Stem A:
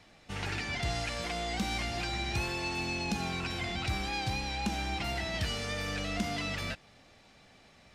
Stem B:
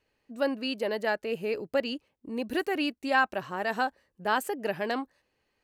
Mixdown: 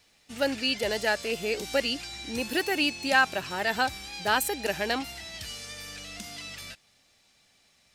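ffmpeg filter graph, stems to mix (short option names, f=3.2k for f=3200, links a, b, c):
-filter_complex "[0:a]highshelf=f=7k:g=10,volume=-12.5dB[a];[1:a]bandreject=f=1.1k:w=10,volume=-0.5dB[b];[a][b]amix=inputs=2:normalize=0,highshelf=f=2.1k:g=11.5"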